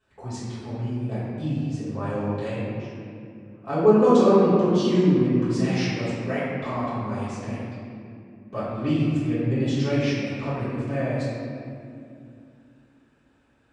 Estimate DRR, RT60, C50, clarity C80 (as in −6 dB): −14.5 dB, 2.5 s, −3.5 dB, −1.0 dB